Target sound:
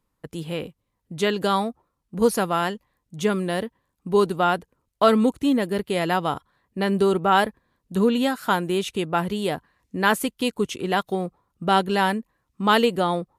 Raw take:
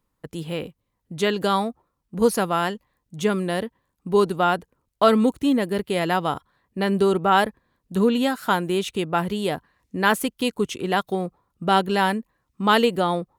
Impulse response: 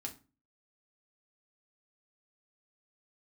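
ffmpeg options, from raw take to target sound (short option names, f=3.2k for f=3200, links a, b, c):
-ar 32000 -c:a libmp3lame -b:a 80k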